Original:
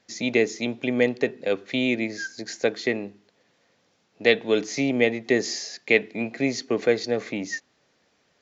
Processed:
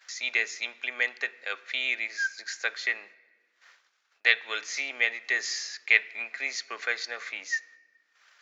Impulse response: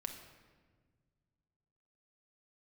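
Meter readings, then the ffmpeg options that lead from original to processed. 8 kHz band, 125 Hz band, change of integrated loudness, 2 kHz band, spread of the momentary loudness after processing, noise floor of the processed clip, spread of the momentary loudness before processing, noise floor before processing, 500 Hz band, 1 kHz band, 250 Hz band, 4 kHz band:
n/a, under -40 dB, -3.5 dB, +2.0 dB, 10 LU, -72 dBFS, 10 LU, -67 dBFS, -20.5 dB, -4.5 dB, under -25 dB, -1.0 dB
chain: -filter_complex "[0:a]acompressor=mode=upward:threshold=-36dB:ratio=2.5,highpass=f=1.4k:t=q:w=2.2,agate=range=-22dB:threshold=-48dB:ratio=16:detection=peak,asplit=2[a][b];[1:a]atrim=start_sample=2205[c];[b][c]afir=irnorm=-1:irlink=0,volume=-10dB[d];[a][d]amix=inputs=2:normalize=0,volume=-4dB"

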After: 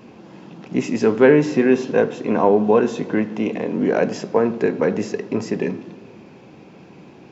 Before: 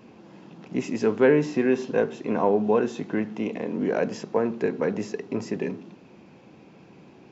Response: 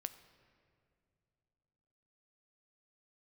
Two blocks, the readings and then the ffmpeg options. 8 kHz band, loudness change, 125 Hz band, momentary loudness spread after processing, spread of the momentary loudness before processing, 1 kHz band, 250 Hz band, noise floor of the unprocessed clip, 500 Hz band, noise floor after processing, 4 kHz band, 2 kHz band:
n/a, +6.5 dB, +6.0 dB, 11 LU, 11 LU, +6.5 dB, +6.5 dB, -51 dBFS, +6.0 dB, -45 dBFS, +6.0 dB, +6.0 dB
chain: -filter_complex "[0:a]asplit=2[a][b];[1:a]atrim=start_sample=2205[c];[b][c]afir=irnorm=-1:irlink=0,volume=8.5dB[d];[a][d]amix=inputs=2:normalize=0,volume=-3dB"

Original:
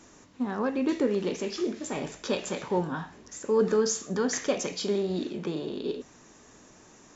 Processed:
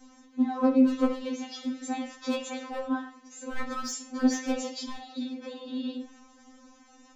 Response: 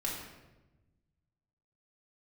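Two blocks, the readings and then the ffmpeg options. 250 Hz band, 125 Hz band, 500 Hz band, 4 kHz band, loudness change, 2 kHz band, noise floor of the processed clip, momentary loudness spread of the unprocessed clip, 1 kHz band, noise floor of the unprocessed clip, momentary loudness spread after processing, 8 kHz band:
+3.0 dB, under -15 dB, -7.0 dB, -2.5 dB, -0.5 dB, -2.0 dB, -57 dBFS, 9 LU, +0.5 dB, -55 dBFS, 16 LU, n/a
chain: -filter_complex "[0:a]aeval=exprs='0.1*(abs(mod(val(0)/0.1+3,4)-2)-1)':c=same,asplit=2[a][b];[1:a]atrim=start_sample=2205,afade=t=out:st=0.15:d=0.01,atrim=end_sample=7056,lowpass=4.4k[c];[b][c]afir=irnorm=-1:irlink=0,volume=-6dB[d];[a][d]amix=inputs=2:normalize=0,afftfilt=real='re*3.46*eq(mod(b,12),0)':imag='im*3.46*eq(mod(b,12),0)':win_size=2048:overlap=0.75,volume=-2dB"

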